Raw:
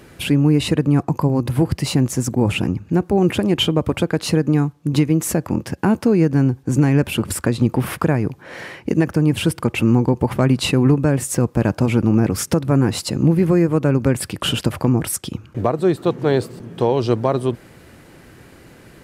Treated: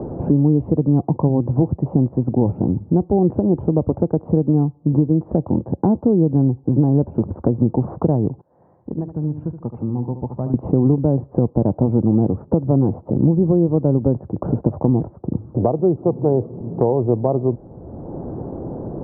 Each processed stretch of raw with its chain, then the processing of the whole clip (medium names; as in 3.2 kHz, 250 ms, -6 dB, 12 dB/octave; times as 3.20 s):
8.41–10.54 s: amplifier tone stack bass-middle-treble 5-5-5 + feedback delay 73 ms, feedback 36%, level -8 dB + upward expansion, over -50 dBFS
whole clip: steep low-pass 860 Hz 36 dB/octave; three bands compressed up and down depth 70%